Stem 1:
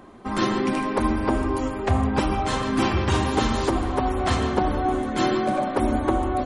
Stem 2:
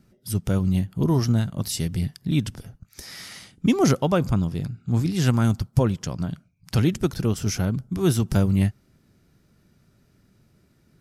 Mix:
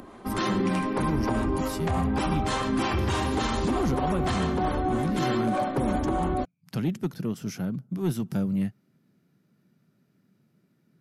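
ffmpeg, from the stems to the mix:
-filter_complex "[0:a]acompressor=mode=upward:threshold=0.0126:ratio=2.5,acrossover=split=430[s0][s1];[s0]aeval=exprs='val(0)*(1-0.5/2+0.5/2*cos(2*PI*3.3*n/s))':c=same[s2];[s1]aeval=exprs='val(0)*(1-0.5/2-0.5/2*cos(2*PI*3.3*n/s))':c=same[s3];[s2][s3]amix=inputs=2:normalize=0,volume=1[s4];[1:a]highpass=f=160:w=0.5412,highpass=f=160:w=1.3066,bass=f=250:g=8,treble=f=4000:g=-6,asoftclip=type=tanh:threshold=0.316,volume=0.422[s5];[s4][s5]amix=inputs=2:normalize=0,equalizer=f=12000:t=o:w=0.23:g=7.5,alimiter=limit=0.133:level=0:latency=1:release=20"

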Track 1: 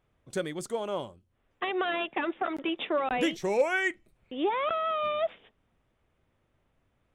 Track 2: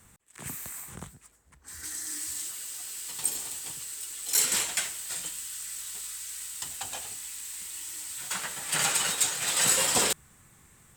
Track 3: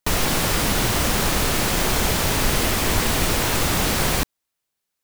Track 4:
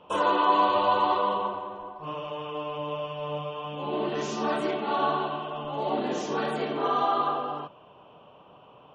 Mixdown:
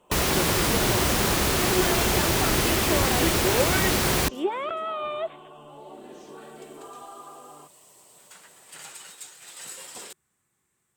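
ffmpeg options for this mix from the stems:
-filter_complex "[0:a]volume=0.841,asplit=2[s0][s1];[1:a]highpass=f=190:p=1,volume=0.15[s2];[2:a]highpass=43,adelay=50,volume=0.794[s3];[3:a]acompressor=threshold=0.0158:ratio=2.5,volume=0.355[s4];[s1]apad=whole_len=483748[s5];[s2][s5]sidechaincompress=threshold=0.00282:ratio=5:attack=16:release=1000[s6];[s0][s6][s3][s4]amix=inputs=4:normalize=0,equalizer=f=370:w=6.6:g=6"

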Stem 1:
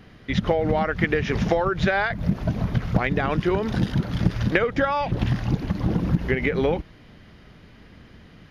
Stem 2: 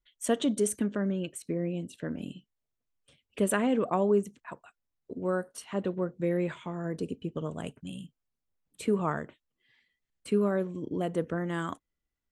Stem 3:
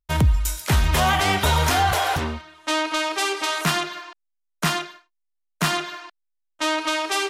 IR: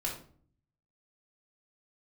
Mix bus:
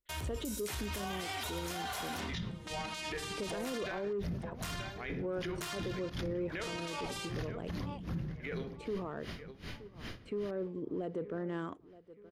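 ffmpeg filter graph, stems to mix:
-filter_complex "[0:a]acompressor=threshold=0.0316:ratio=6,aeval=exprs='val(0)*pow(10,-36*(0.5-0.5*cos(2*PI*2.6*n/s))/20)':c=same,adelay=2000,volume=1.41,asplit=3[s0][s1][s2];[s1]volume=0.376[s3];[s2]volume=0.188[s4];[1:a]equalizer=f=420:w=1.2:g=8,adynamicsmooth=sensitivity=3.5:basefreq=3700,aeval=exprs='0.355*(cos(1*acos(clip(val(0)/0.355,-1,1)))-cos(1*PI/2))+0.0126*(cos(5*acos(clip(val(0)/0.355,-1,1)))-cos(5*PI/2))':c=same,volume=0.355,asplit=2[s5][s6];[s6]volume=0.0708[s7];[2:a]highpass=68,equalizer=f=170:t=o:w=1.2:g=-13.5,volume=0.2,asplit=2[s8][s9];[s9]volume=0.447[s10];[s0][s8]amix=inputs=2:normalize=0,highshelf=f=2100:g=11.5,acompressor=threshold=0.0126:ratio=3,volume=1[s11];[3:a]atrim=start_sample=2205[s12];[s3][s10]amix=inputs=2:normalize=0[s13];[s13][s12]afir=irnorm=-1:irlink=0[s14];[s4][s7]amix=inputs=2:normalize=0,aecho=0:1:923|1846|2769|3692|4615|5538:1|0.4|0.16|0.064|0.0256|0.0102[s15];[s5][s11][s14][s15]amix=inputs=4:normalize=0,alimiter=level_in=2:limit=0.0631:level=0:latency=1:release=21,volume=0.501"

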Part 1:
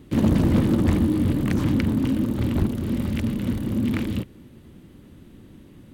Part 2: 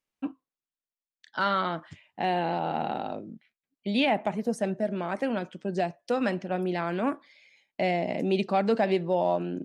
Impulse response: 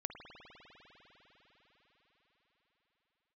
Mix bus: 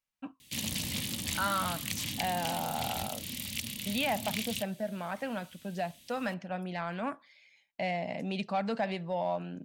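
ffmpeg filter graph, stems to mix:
-filter_complex "[0:a]highpass=f=130:p=1,equalizer=f=6200:t=o:w=1.5:g=2,aexciter=amount=12.5:drive=2.9:freq=2100,adelay=400,volume=0.168[s0];[1:a]volume=0.708[s1];[s0][s1]amix=inputs=2:normalize=0,equalizer=f=360:t=o:w=0.82:g=-13,asoftclip=type=tanh:threshold=0.106"

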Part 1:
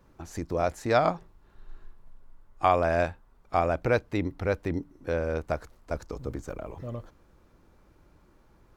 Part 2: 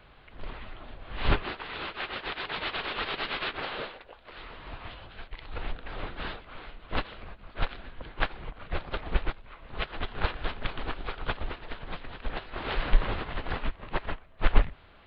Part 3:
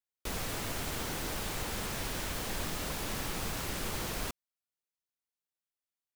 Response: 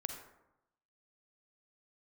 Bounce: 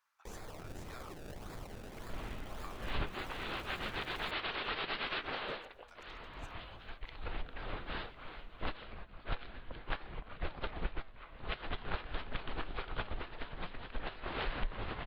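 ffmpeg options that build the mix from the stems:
-filter_complex "[0:a]acompressor=threshold=0.0112:ratio=2.5,highpass=f=1100:w=0.5412,highpass=f=1100:w=1.3066,volume=0.316[s0];[1:a]flanger=delay=3:depth=7:regen=88:speed=0.57:shape=triangular,adelay=1700,volume=1[s1];[2:a]lowpass=f=9600:w=0.5412,lowpass=f=9600:w=1.3066,aphaser=in_gain=1:out_gain=1:delay=2.9:decay=0.46:speed=1.3:type=triangular,acrusher=samples=29:mix=1:aa=0.000001:lfo=1:lforange=29:lforate=1.8,volume=0.251[s2];[s0][s1][s2]amix=inputs=3:normalize=0,acompressor=threshold=0.0251:ratio=4"

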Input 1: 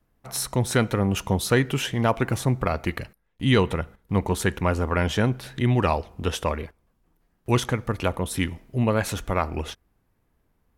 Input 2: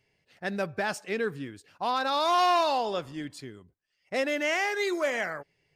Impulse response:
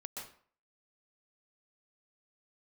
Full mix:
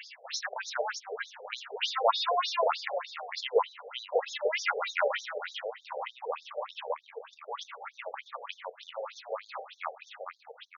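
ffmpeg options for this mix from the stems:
-filter_complex "[0:a]dynaudnorm=f=720:g=5:m=3.76,volume=0.531,asplit=3[s0][s1][s2];[s1]volume=0.237[s3];[s2]volume=0.299[s4];[1:a]highpass=f=410:w=0.5412,highpass=f=410:w=1.3066,highshelf=f=3300:g=8.5,volume=0.891,asplit=3[s5][s6][s7];[s6]volume=0.126[s8];[s7]apad=whole_len=475068[s9];[s0][s9]sidechaingate=range=0.0224:threshold=0.00141:ratio=16:detection=peak[s10];[2:a]atrim=start_sample=2205[s11];[s3][s11]afir=irnorm=-1:irlink=0[s12];[s4][s8]amix=inputs=2:normalize=0,aecho=0:1:452|904|1356|1808:1|0.23|0.0529|0.0122[s13];[s10][s5][s12][s13]amix=inputs=4:normalize=0,acompressor=mode=upward:threshold=0.0891:ratio=2.5,afftfilt=real='re*between(b*sr/1024,550*pow(5000/550,0.5+0.5*sin(2*PI*3.3*pts/sr))/1.41,550*pow(5000/550,0.5+0.5*sin(2*PI*3.3*pts/sr))*1.41)':imag='im*between(b*sr/1024,550*pow(5000/550,0.5+0.5*sin(2*PI*3.3*pts/sr))/1.41,550*pow(5000/550,0.5+0.5*sin(2*PI*3.3*pts/sr))*1.41)':win_size=1024:overlap=0.75"

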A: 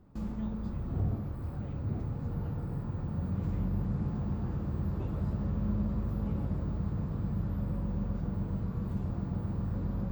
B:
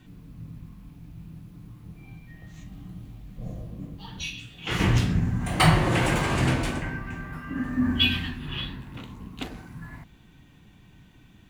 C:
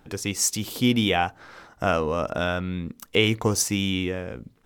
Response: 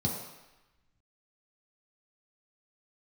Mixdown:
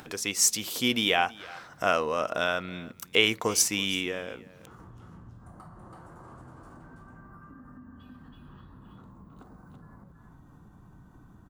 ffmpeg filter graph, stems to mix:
-filter_complex "[0:a]highpass=140,volume=0.126[s0];[1:a]equalizer=f=9800:t=o:w=1.8:g=5.5,acompressor=threshold=0.0251:ratio=2.5,highshelf=f=1700:t=q:w=3:g=-10,volume=0.251,asplit=2[s1][s2];[s2]volume=0.141[s3];[2:a]highpass=f=640:p=1,bandreject=f=840:w=14,volume=1.12,asplit=3[s4][s5][s6];[s5]volume=0.0841[s7];[s6]apad=whole_len=506848[s8];[s1][s8]sidechaincompress=threshold=0.00447:ratio=8:attack=16:release=456[s9];[s0][s9]amix=inputs=2:normalize=0,equalizer=f=3100:w=1.3:g=-7.5,acompressor=threshold=0.00112:ratio=2.5,volume=1[s10];[s3][s7]amix=inputs=2:normalize=0,aecho=0:1:328:1[s11];[s4][s10][s11]amix=inputs=3:normalize=0,acompressor=mode=upward:threshold=0.01:ratio=2.5"

